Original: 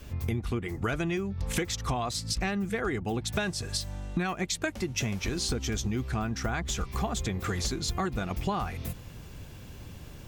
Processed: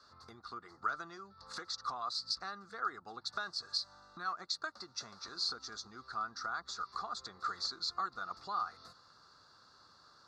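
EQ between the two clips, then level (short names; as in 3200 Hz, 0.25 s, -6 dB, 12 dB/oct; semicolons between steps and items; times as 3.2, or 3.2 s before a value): double band-pass 2400 Hz, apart 1.8 oct; Butterworth band-stop 3100 Hz, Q 6; air absorption 61 m; +5.0 dB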